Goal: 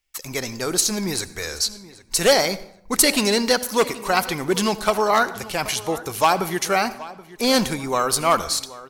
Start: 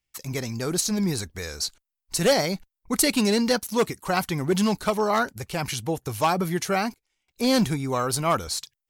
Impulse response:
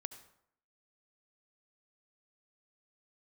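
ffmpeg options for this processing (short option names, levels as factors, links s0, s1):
-filter_complex "[0:a]equalizer=f=120:t=o:w=2.2:g=-15,asplit=2[s0][s1];[s1]adelay=777,lowpass=f=4500:p=1,volume=0.126,asplit=2[s2][s3];[s3]adelay=777,lowpass=f=4500:p=1,volume=0.3,asplit=2[s4][s5];[s5]adelay=777,lowpass=f=4500:p=1,volume=0.3[s6];[s0][s2][s4][s6]amix=inputs=4:normalize=0,asplit=2[s7][s8];[1:a]atrim=start_sample=2205,lowshelf=f=210:g=7[s9];[s8][s9]afir=irnorm=-1:irlink=0,volume=1.5[s10];[s7][s10]amix=inputs=2:normalize=0"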